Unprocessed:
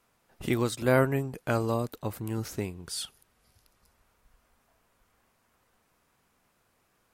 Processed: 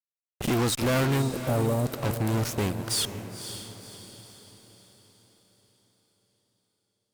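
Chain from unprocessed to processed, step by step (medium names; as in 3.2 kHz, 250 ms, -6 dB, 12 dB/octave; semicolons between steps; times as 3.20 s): fuzz box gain 39 dB, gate -41 dBFS; 1.22–1.86 s: Chebyshev band-stop 810–9300 Hz, order 2; echo that smears into a reverb 532 ms, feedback 46%, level -10 dB; trim -9 dB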